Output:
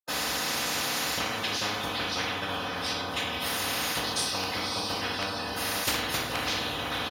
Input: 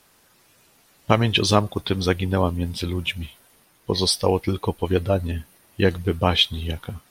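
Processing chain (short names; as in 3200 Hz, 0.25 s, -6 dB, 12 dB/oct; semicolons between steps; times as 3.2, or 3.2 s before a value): vocal rider 0.5 s; flipped gate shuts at -21 dBFS, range -31 dB; comb 4 ms, depth 90%; level quantiser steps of 16 dB; HPF 280 Hz 6 dB/oct; bell 780 Hz +15 dB 0.5 oct; diffused feedback echo 0.58 s, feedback 44%, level -12.5 dB; reverb RT60 0.60 s, pre-delay 76 ms; overloaded stage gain 20.5 dB; spectral compressor 10:1; gain +8.5 dB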